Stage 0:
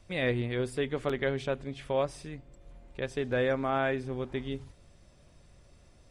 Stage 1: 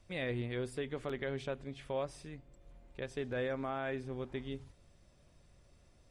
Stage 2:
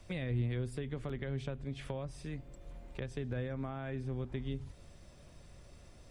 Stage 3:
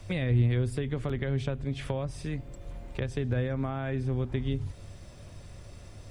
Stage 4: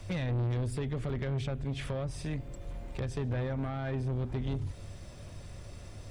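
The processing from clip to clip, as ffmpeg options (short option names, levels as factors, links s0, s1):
-af "alimiter=limit=0.0891:level=0:latency=1:release=58,volume=0.501"
-filter_complex "[0:a]acrossover=split=190[s0][s1];[s1]acompressor=threshold=0.00282:ratio=5[s2];[s0][s2]amix=inputs=2:normalize=0,volume=2.66"
-af "equalizer=f=100:w=6:g=12.5,volume=2.37"
-af "asoftclip=type=tanh:threshold=0.0355,volume=1.12"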